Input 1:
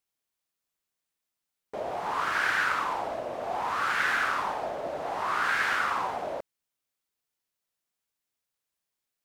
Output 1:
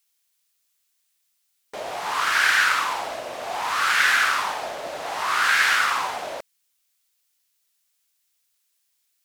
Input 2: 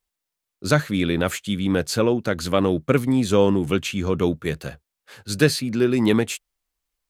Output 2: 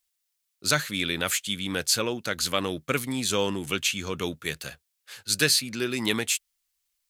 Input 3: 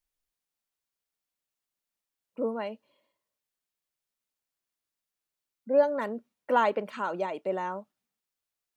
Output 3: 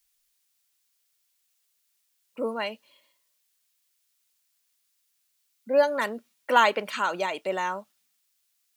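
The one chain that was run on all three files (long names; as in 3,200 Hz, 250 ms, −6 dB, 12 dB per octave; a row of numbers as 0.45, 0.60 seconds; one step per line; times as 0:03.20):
tilt shelving filter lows −9 dB, about 1,400 Hz
normalise the peak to −6 dBFS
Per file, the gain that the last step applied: +6.5, −2.5, +7.5 decibels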